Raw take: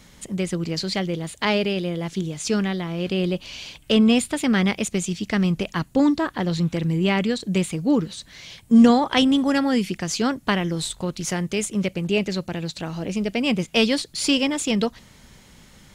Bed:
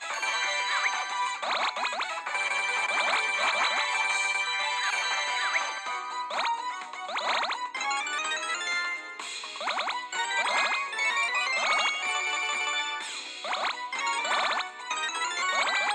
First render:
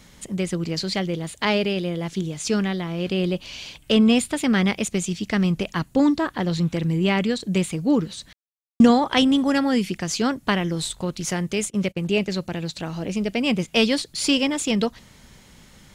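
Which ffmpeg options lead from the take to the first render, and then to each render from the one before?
ffmpeg -i in.wav -filter_complex "[0:a]asplit=3[link_01][link_02][link_03];[link_01]afade=type=out:start_time=11.69:duration=0.02[link_04];[link_02]agate=range=-24dB:threshold=-33dB:ratio=16:release=100:detection=peak,afade=type=in:start_time=11.69:duration=0.02,afade=type=out:start_time=12.3:duration=0.02[link_05];[link_03]afade=type=in:start_time=12.3:duration=0.02[link_06];[link_04][link_05][link_06]amix=inputs=3:normalize=0,asplit=3[link_07][link_08][link_09];[link_07]atrim=end=8.33,asetpts=PTS-STARTPTS,afade=type=out:start_time=8.326:duration=0.004:curve=hsin[link_10];[link_08]atrim=start=8.33:end=8.8,asetpts=PTS-STARTPTS,volume=0[link_11];[link_09]atrim=start=8.8,asetpts=PTS-STARTPTS,afade=type=in:duration=0.004:curve=hsin[link_12];[link_10][link_11][link_12]concat=n=3:v=0:a=1" out.wav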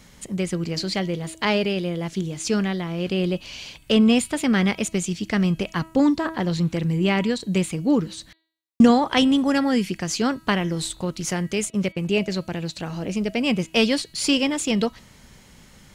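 ffmpeg -i in.wav -af "equalizer=frequency=3600:width_type=o:width=0.2:gain=-3,bandreject=frequency=322.9:width_type=h:width=4,bandreject=frequency=645.8:width_type=h:width=4,bandreject=frequency=968.7:width_type=h:width=4,bandreject=frequency=1291.6:width_type=h:width=4,bandreject=frequency=1614.5:width_type=h:width=4,bandreject=frequency=1937.4:width_type=h:width=4,bandreject=frequency=2260.3:width_type=h:width=4,bandreject=frequency=2583.2:width_type=h:width=4,bandreject=frequency=2906.1:width_type=h:width=4,bandreject=frequency=3229:width_type=h:width=4,bandreject=frequency=3551.9:width_type=h:width=4,bandreject=frequency=3874.8:width_type=h:width=4,bandreject=frequency=4197.7:width_type=h:width=4,bandreject=frequency=4520.6:width_type=h:width=4" out.wav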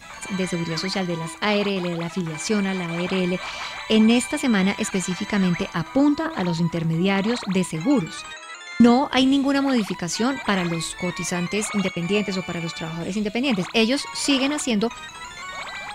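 ffmpeg -i in.wav -i bed.wav -filter_complex "[1:a]volume=-6.5dB[link_01];[0:a][link_01]amix=inputs=2:normalize=0" out.wav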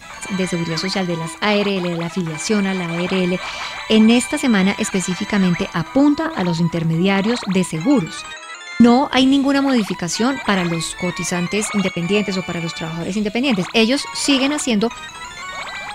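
ffmpeg -i in.wav -af "volume=4.5dB,alimiter=limit=-2dB:level=0:latency=1" out.wav

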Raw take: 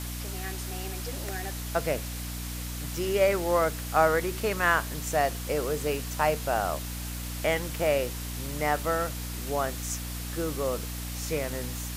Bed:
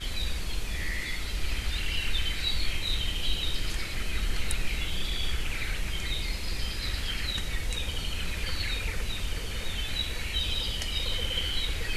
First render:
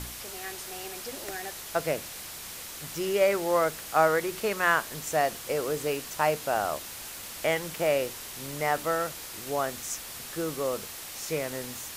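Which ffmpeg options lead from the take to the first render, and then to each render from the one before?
ffmpeg -i in.wav -af "bandreject=frequency=60:width_type=h:width=4,bandreject=frequency=120:width_type=h:width=4,bandreject=frequency=180:width_type=h:width=4,bandreject=frequency=240:width_type=h:width=4,bandreject=frequency=300:width_type=h:width=4" out.wav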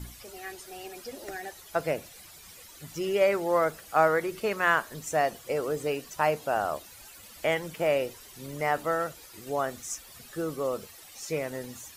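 ffmpeg -i in.wav -af "afftdn=noise_reduction=13:noise_floor=-41" out.wav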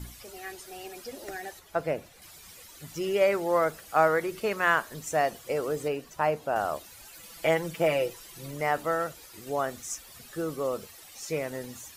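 ffmpeg -i in.wav -filter_complex "[0:a]asettb=1/sr,asplit=3[link_01][link_02][link_03];[link_01]atrim=end=1.594[link_04];[link_02]atrim=start=1.59:end=2.22,asetpts=PTS-STARTPTS,afade=type=in:duration=0.004:curve=qsin,afade=type=out:start_time=0.626:duration=0.004:curve=qsin,highshelf=frequency=3000:gain=-9[link_05];[link_03]atrim=start=2.216[link_06];[link_04][link_05]acrossfade=duration=0.004:curve1=hsin:curve2=qsin[link_07];[link_07][link_06]acrossfade=duration=0.004:curve1=qsin:curve2=hsin,asettb=1/sr,asplit=3[link_08][link_09][link_10];[link_08]atrim=end=5.884[link_11];[link_09]atrim=start=5.88:end=6.56,asetpts=PTS-STARTPTS,afade=type=in:duration=0.004:curve=qsin,afade=type=out:start_time=0.676:duration=0.004:curve=qsin,highshelf=frequency=2300:gain=-7.5[link_12];[link_10]atrim=start=6.556[link_13];[link_11][link_12]acrossfade=duration=0.004:curve1=hsin:curve2=qsin[link_14];[link_14][link_13]acrossfade=duration=0.004:curve1=qsin:curve2=hsin,asettb=1/sr,asplit=3[link_15][link_16][link_17];[link_15]atrim=end=7.124[link_18];[link_16]atrim=start=7.12:end=8.51,asetpts=PTS-STARTPTS,afade=type=in:duration=0.004:curve=qsin,afade=type=out:start_time=1.386:duration=0.004:curve=qsin,aecho=1:1:6:0.65,atrim=end_sample=61299[link_19];[link_17]atrim=start=8.506[link_20];[link_18][link_19]acrossfade=duration=0.004:curve1=hsin:curve2=qsin[link_21];[link_21][link_20]acrossfade=duration=0.004:curve1=qsin:curve2=hsin" out.wav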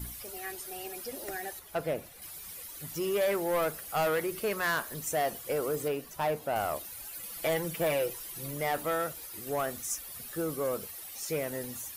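ffmpeg -i in.wav -filter_complex "[0:a]acrossover=split=5600[link_01][link_02];[link_01]asoftclip=type=tanh:threshold=-24dB[link_03];[link_02]aexciter=amount=1.8:drive=8.7:freq=9400[link_04];[link_03][link_04]amix=inputs=2:normalize=0" out.wav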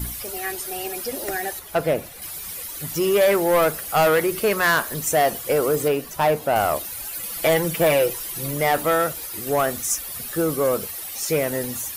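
ffmpeg -i in.wav -af "volume=11dB" out.wav

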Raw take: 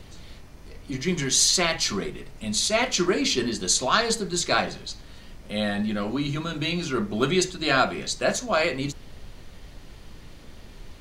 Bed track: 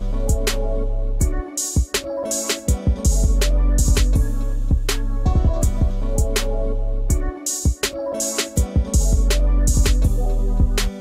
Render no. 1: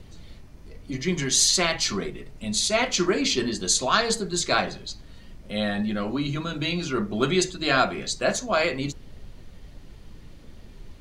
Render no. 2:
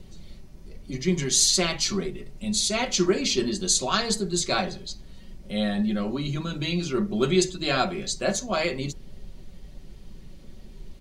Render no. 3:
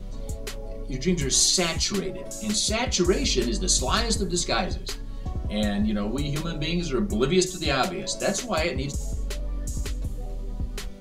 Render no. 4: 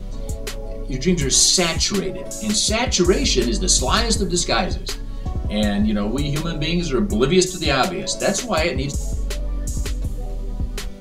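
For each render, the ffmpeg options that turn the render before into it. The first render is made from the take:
ffmpeg -i in.wav -af "afftdn=noise_reduction=6:noise_floor=-46" out.wav
ffmpeg -i in.wav -af "equalizer=frequency=1400:width_type=o:width=2:gain=-6,aecho=1:1:5.3:0.41" out.wav
ffmpeg -i in.wav -i bed.wav -filter_complex "[1:a]volume=-14dB[link_01];[0:a][link_01]amix=inputs=2:normalize=0" out.wav
ffmpeg -i in.wav -af "volume=5.5dB" out.wav

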